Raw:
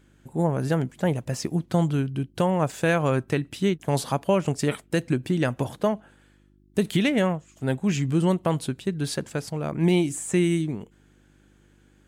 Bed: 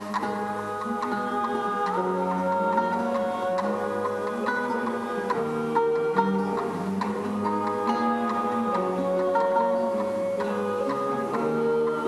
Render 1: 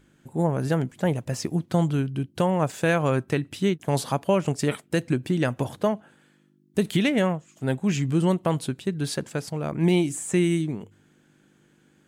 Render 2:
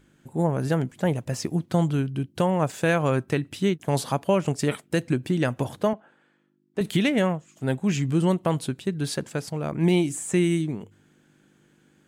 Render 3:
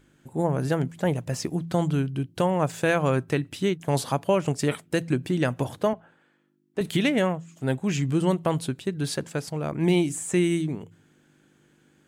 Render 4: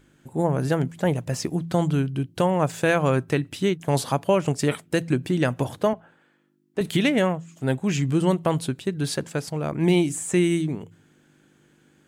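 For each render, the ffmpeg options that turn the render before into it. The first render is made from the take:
ffmpeg -i in.wav -af "bandreject=frequency=50:width_type=h:width=4,bandreject=frequency=100:width_type=h:width=4" out.wav
ffmpeg -i in.wav -filter_complex "[0:a]asettb=1/sr,asplit=3[link_01][link_02][link_03];[link_01]atrim=end=5.934[link_04];[link_02]atrim=start=5.93:end=6.81,asetpts=PTS-STARTPTS,afade=type=in:duration=0.004:curve=qsin,afade=type=out:start_time=0.876:duration=0.004:curve=qsin,bandpass=frequency=900:width_type=q:width=0.54[link_05];[link_03]atrim=start=6.806[link_06];[link_04][link_05]acrossfade=duration=0.004:curve1=hsin:curve2=qsin[link_07];[link_07][link_06]acrossfade=duration=0.004:curve1=qsin:curve2=hsin" out.wav
ffmpeg -i in.wav -af "equalizer=frequency=200:width_type=o:width=0.25:gain=-3.5,bandreject=frequency=55.54:width_type=h:width=4,bandreject=frequency=111.08:width_type=h:width=4,bandreject=frequency=166.62:width_type=h:width=4" out.wav
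ffmpeg -i in.wav -af "volume=2dB" out.wav

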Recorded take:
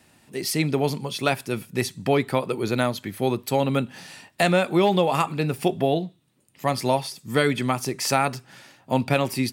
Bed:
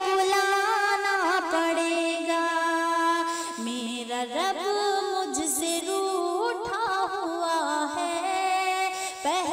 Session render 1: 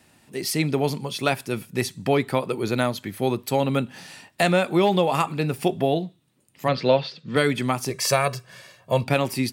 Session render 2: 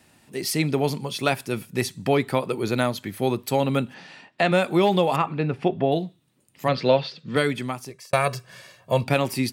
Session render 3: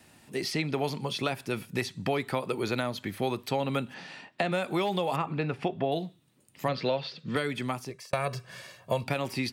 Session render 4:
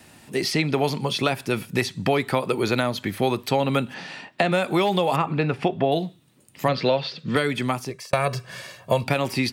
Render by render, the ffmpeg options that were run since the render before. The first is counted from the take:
ffmpeg -i in.wav -filter_complex "[0:a]asplit=3[link_01][link_02][link_03];[link_01]afade=type=out:start_time=6.67:duration=0.02[link_04];[link_02]highpass=120,equalizer=frequency=160:width_type=q:width=4:gain=9,equalizer=frequency=500:width_type=q:width=4:gain=10,equalizer=frequency=850:width_type=q:width=4:gain=-6,equalizer=frequency=1500:width_type=q:width=4:gain=7,equalizer=frequency=2800:width_type=q:width=4:gain=5,equalizer=frequency=4000:width_type=q:width=4:gain=7,lowpass=frequency=4300:width=0.5412,lowpass=frequency=4300:width=1.3066,afade=type=in:start_time=6.67:duration=0.02,afade=type=out:start_time=7.35:duration=0.02[link_05];[link_03]afade=type=in:start_time=7.35:duration=0.02[link_06];[link_04][link_05][link_06]amix=inputs=3:normalize=0,asettb=1/sr,asplit=3[link_07][link_08][link_09];[link_07]atrim=end=7.904[link_10];[link_08]atrim=start=7.9:end=9.04,asetpts=PTS-STARTPTS,afade=type=in:duration=0.004:curve=qsin,afade=type=out:start_time=1.136:duration=0.004:curve=qsin,aecho=1:1:1.8:0.78,atrim=end_sample=50274[link_11];[link_09]atrim=start=9.036[link_12];[link_10][link_11]acrossfade=duration=0.004:curve1=hsin:curve2=qsin[link_13];[link_13][link_12]acrossfade=duration=0.004:curve1=qsin:curve2=hsin" out.wav
ffmpeg -i in.wav -filter_complex "[0:a]asplit=3[link_01][link_02][link_03];[link_01]afade=type=out:start_time=3.93:duration=0.02[link_04];[link_02]highpass=160,lowpass=3600,afade=type=in:start_time=3.93:duration=0.02,afade=type=out:start_time=4.51:duration=0.02[link_05];[link_03]afade=type=in:start_time=4.51:duration=0.02[link_06];[link_04][link_05][link_06]amix=inputs=3:normalize=0,asettb=1/sr,asplit=3[link_07][link_08][link_09];[link_07]atrim=end=5.164[link_10];[link_08]atrim=start=5.16:end=5.92,asetpts=PTS-STARTPTS,afade=type=in:duration=0.004:curve=qsin,afade=type=out:start_time=0.756:duration=0.004:curve=qsin,lowpass=2600[link_11];[link_09]atrim=start=5.916[link_12];[link_10][link_11]acrossfade=duration=0.004:curve1=hsin:curve2=qsin[link_13];[link_13][link_12]acrossfade=duration=0.004:curve1=qsin:curve2=hsin,asplit=2[link_14][link_15];[link_14]atrim=end=8.13,asetpts=PTS-STARTPTS,afade=type=out:start_time=7.29:duration=0.84[link_16];[link_15]atrim=start=8.13,asetpts=PTS-STARTPTS,afade=type=in:duration=0.004:curve=hsin[link_17];[link_16][link_17]concat=n=2:v=0:a=1" out.wav
ffmpeg -i in.wav -filter_complex "[0:a]alimiter=limit=-10dB:level=0:latency=1:release=326,acrossover=split=610|5300[link_01][link_02][link_03];[link_01]acompressor=threshold=-30dB:ratio=4[link_04];[link_02]acompressor=threshold=-30dB:ratio=4[link_05];[link_03]acompressor=threshold=-51dB:ratio=4[link_06];[link_04][link_05][link_06]amix=inputs=3:normalize=0" out.wav
ffmpeg -i in.wav -af "volume=7.5dB" out.wav

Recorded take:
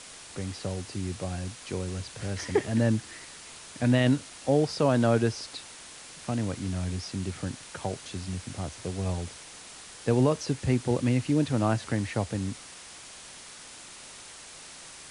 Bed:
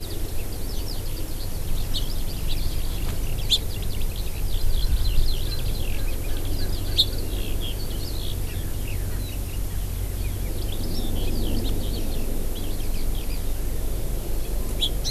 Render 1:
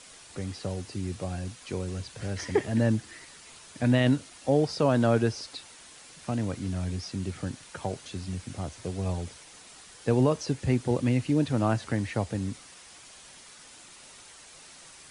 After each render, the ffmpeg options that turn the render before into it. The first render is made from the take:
ffmpeg -i in.wav -af "afftdn=noise_reduction=6:noise_floor=-47" out.wav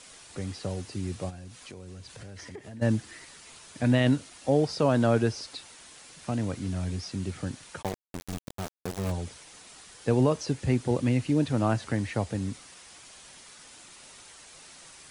ffmpeg -i in.wav -filter_complex "[0:a]asplit=3[link_01][link_02][link_03];[link_01]afade=type=out:start_time=1.29:duration=0.02[link_04];[link_02]acompressor=threshold=-41dB:ratio=5:attack=3.2:release=140:knee=1:detection=peak,afade=type=in:start_time=1.29:duration=0.02,afade=type=out:start_time=2.81:duration=0.02[link_05];[link_03]afade=type=in:start_time=2.81:duration=0.02[link_06];[link_04][link_05][link_06]amix=inputs=3:normalize=0,asplit=3[link_07][link_08][link_09];[link_07]afade=type=out:start_time=7.81:duration=0.02[link_10];[link_08]aeval=exprs='val(0)*gte(abs(val(0)),0.0299)':channel_layout=same,afade=type=in:start_time=7.81:duration=0.02,afade=type=out:start_time=9.1:duration=0.02[link_11];[link_09]afade=type=in:start_time=9.1:duration=0.02[link_12];[link_10][link_11][link_12]amix=inputs=3:normalize=0" out.wav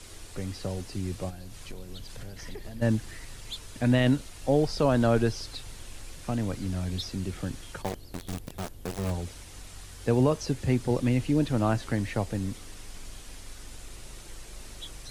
ffmpeg -i in.wav -i bed.wav -filter_complex "[1:a]volume=-18.5dB[link_01];[0:a][link_01]amix=inputs=2:normalize=0" out.wav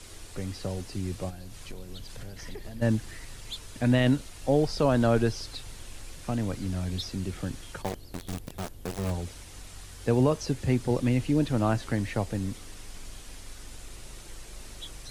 ffmpeg -i in.wav -af anull out.wav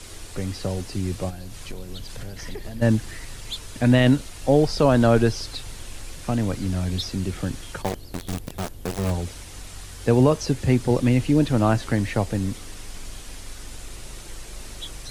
ffmpeg -i in.wav -af "volume=6dB" out.wav

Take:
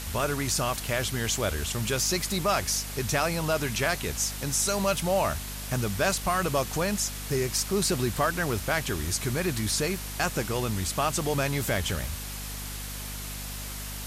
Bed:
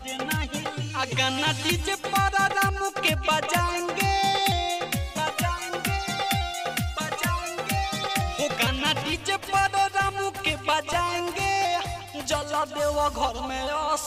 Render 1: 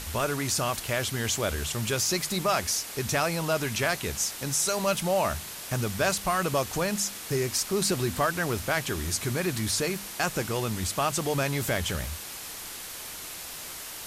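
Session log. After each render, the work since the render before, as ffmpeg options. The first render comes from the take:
ffmpeg -i in.wav -af "bandreject=frequency=50:width_type=h:width=4,bandreject=frequency=100:width_type=h:width=4,bandreject=frequency=150:width_type=h:width=4,bandreject=frequency=200:width_type=h:width=4,bandreject=frequency=250:width_type=h:width=4" out.wav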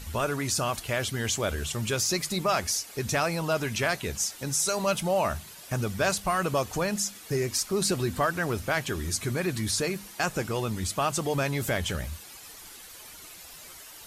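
ffmpeg -i in.wav -af "afftdn=noise_reduction=10:noise_floor=-40" out.wav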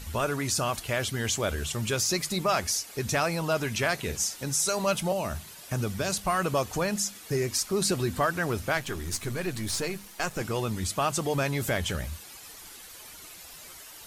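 ffmpeg -i in.wav -filter_complex "[0:a]asettb=1/sr,asplit=3[link_01][link_02][link_03];[link_01]atrim=end=3.944[link_04];[link_02]atrim=start=3.94:end=4.45,asetpts=PTS-STARTPTS,afade=type=in:duration=0.004:curve=qsin,afade=type=out:start_time=0.506:duration=0.004:curve=qsin,asplit=2[link_05][link_06];[link_06]adelay=50,volume=-10dB[link_07];[link_05][link_07]amix=inputs=2:normalize=0,atrim=end_sample=22491[link_08];[link_03]atrim=start=4.446[link_09];[link_04][link_08]acrossfade=duration=0.004:curve1=hsin:curve2=qsin[link_10];[link_10][link_09]acrossfade=duration=0.004:curve1=qsin:curve2=hsin,asettb=1/sr,asplit=3[link_11][link_12][link_13];[link_11]atrim=end=5.124[link_14];[link_12]atrim=start=5.12:end=6.18,asetpts=PTS-STARTPTS,afade=type=in:duration=0.004:curve=qsin,afade=type=out:start_time=1.056:duration=0.004:curve=qsin,acrossover=split=460|3000[link_15][link_16][link_17];[link_16]acompressor=threshold=-32dB:ratio=6:attack=3.2:release=140:knee=2.83:detection=peak[link_18];[link_15][link_18][link_17]amix=inputs=3:normalize=0[link_19];[link_13]atrim=start=6.176[link_20];[link_14][link_19]acrossfade=duration=0.004:curve1=hsin:curve2=qsin[link_21];[link_21][link_20]acrossfade=duration=0.004:curve1=qsin:curve2=hsin,asettb=1/sr,asplit=3[link_22][link_23][link_24];[link_22]atrim=end=8.774[link_25];[link_23]atrim=start=8.77:end=10.41,asetpts=PTS-STARTPTS,afade=type=in:duration=0.004:curve=qsin,afade=type=out:start_time=1.636:duration=0.004:curve=qsin,aeval=exprs='if(lt(val(0),0),0.447*val(0),val(0))':channel_layout=same[link_26];[link_24]atrim=start=10.406[link_27];[link_25][link_26]acrossfade=duration=0.004:curve1=hsin:curve2=qsin[link_28];[link_28][link_27]acrossfade=duration=0.004:curve1=qsin:curve2=hsin" out.wav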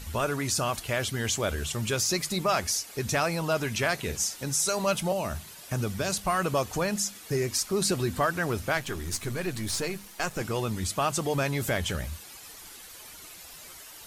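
ffmpeg -i in.wav -af anull out.wav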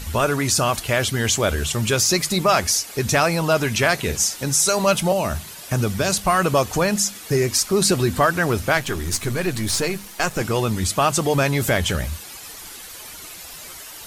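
ffmpeg -i in.wav -af "volume=8.5dB" out.wav

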